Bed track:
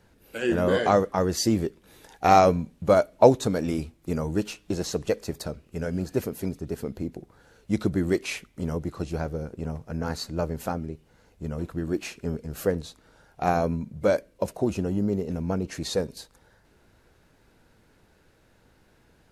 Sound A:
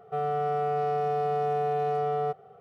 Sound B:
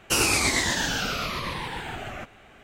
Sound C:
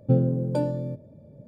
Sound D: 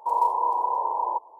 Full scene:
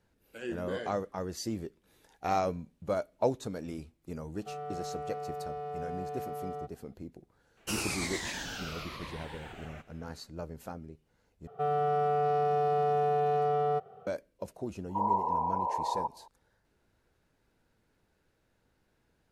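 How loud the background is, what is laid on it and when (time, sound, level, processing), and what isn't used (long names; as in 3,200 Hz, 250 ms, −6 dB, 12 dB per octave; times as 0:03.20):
bed track −12.5 dB
0:04.34: mix in A −11.5 dB
0:07.57: mix in B −12.5 dB
0:11.47: overwrite with A −0.5 dB + notch filter 2,100 Hz, Q 8.2
0:14.89: mix in D −4.5 dB + low-pass filter 1,100 Hz
not used: C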